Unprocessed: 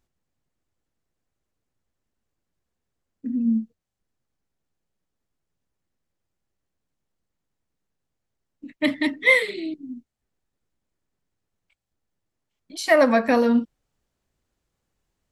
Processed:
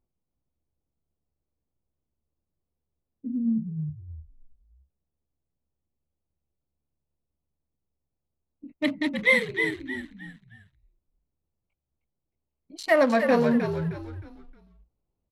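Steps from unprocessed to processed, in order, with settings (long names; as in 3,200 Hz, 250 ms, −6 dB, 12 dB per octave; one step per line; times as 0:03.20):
adaptive Wiener filter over 25 samples
echo with shifted repeats 311 ms, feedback 34%, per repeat −72 Hz, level −6.5 dB
level −3.5 dB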